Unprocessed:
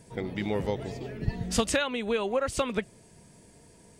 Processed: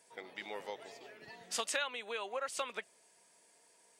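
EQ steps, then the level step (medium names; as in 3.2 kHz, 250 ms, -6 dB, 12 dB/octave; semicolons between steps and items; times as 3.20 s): high-pass 720 Hz 12 dB/octave; -6.0 dB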